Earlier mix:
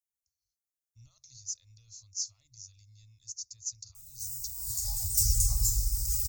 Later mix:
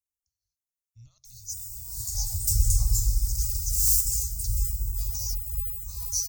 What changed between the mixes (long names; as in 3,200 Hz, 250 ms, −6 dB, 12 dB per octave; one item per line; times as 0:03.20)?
background: entry −2.70 s
master: add low-shelf EQ 370 Hz +6 dB